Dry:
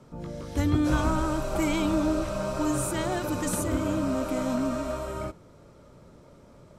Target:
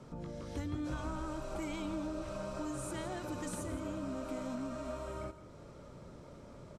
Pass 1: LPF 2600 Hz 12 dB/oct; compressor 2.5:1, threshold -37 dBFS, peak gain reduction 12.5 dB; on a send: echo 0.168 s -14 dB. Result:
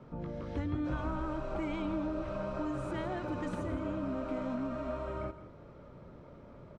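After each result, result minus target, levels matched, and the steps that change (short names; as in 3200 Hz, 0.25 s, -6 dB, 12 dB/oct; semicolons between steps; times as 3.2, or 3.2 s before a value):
8000 Hz band -18.0 dB; compressor: peak gain reduction -4 dB
change: LPF 9700 Hz 12 dB/oct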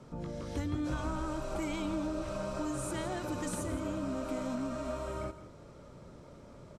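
compressor: peak gain reduction -4 dB
change: compressor 2.5:1, threshold -43.5 dBFS, peak gain reduction 16.5 dB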